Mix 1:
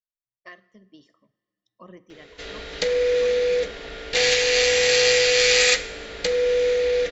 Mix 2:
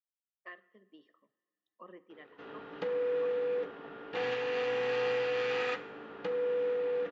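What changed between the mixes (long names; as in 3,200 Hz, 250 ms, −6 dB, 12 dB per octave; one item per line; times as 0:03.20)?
background: add graphic EQ with 10 bands 125 Hz +12 dB, 250 Hz +6 dB, 500 Hz −9 dB, 1,000 Hz +6 dB, 2,000 Hz −11 dB, 4,000 Hz −11 dB
master: add loudspeaker in its box 440–2,600 Hz, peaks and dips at 640 Hz −9 dB, 990 Hz −4 dB, 1,500 Hz −3 dB, 2,200 Hz −8 dB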